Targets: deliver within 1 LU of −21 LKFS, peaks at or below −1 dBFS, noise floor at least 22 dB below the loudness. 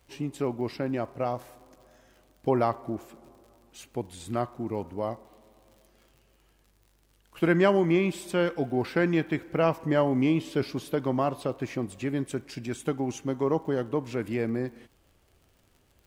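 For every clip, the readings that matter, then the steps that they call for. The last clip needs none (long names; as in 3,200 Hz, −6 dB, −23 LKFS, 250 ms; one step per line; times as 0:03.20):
crackle rate 59 per second; integrated loudness −28.5 LKFS; sample peak −9.5 dBFS; target loudness −21.0 LKFS
→ click removal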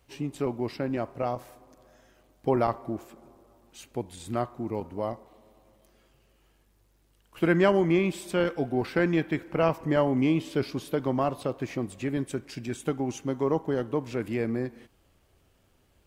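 crackle rate 0.19 per second; integrated loudness −28.5 LKFS; sample peak −9.5 dBFS; target loudness −21.0 LKFS
→ level +7.5 dB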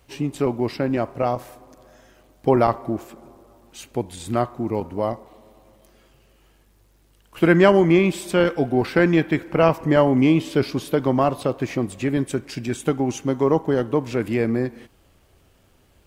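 integrated loudness −21.0 LKFS; sample peak −2.0 dBFS; background noise floor −58 dBFS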